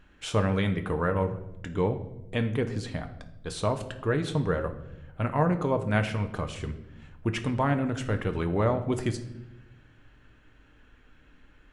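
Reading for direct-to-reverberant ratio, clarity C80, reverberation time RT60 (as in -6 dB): 6.0 dB, 14.5 dB, 0.95 s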